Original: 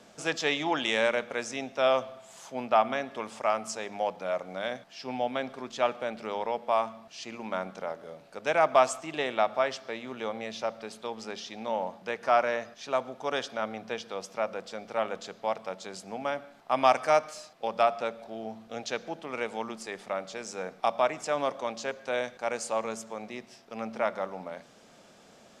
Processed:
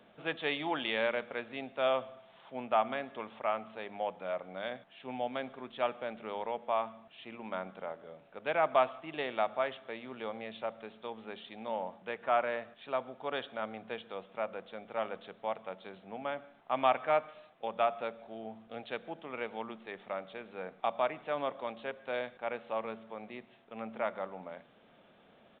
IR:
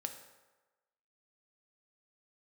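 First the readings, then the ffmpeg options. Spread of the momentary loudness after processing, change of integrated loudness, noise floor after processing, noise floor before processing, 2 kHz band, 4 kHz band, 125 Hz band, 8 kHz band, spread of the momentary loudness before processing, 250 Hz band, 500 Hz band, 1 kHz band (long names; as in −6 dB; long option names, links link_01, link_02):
15 LU, −5.5 dB, −62 dBFS, −56 dBFS, −5.5 dB, −6.5 dB, −5.5 dB, below −35 dB, 14 LU, −5.5 dB, −5.5 dB, −5.5 dB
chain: -af "aresample=8000,aresample=44100,volume=-5.5dB"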